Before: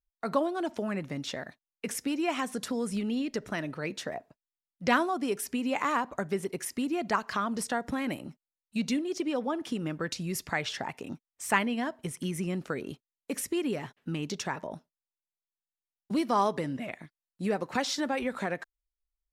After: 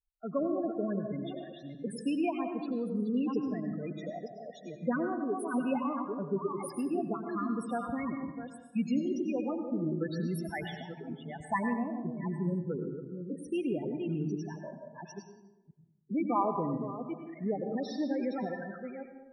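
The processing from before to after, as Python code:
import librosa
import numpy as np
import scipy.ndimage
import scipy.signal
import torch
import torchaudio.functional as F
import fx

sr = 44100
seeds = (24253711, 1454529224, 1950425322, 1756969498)

y = fx.reverse_delay(x, sr, ms=476, wet_db=-6.5)
y = fx.high_shelf(y, sr, hz=2400.0, db=-11.0, at=(11.03, 13.44))
y = fx.spec_topn(y, sr, count=8)
y = fx.rotary(y, sr, hz=0.85)
y = fx.rev_plate(y, sr, seeds[0], rt60_s=0.96, hf_ratio=0.6, predelay_ms=80, drr_db=5.5)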